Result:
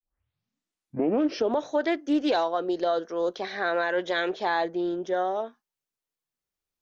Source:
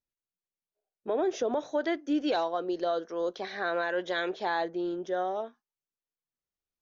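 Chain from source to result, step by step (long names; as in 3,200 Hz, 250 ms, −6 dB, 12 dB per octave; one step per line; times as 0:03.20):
turntable start at the beginning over 1.55 s
highs frequency-modulated by the lows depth 0.13 ms
level +4 dB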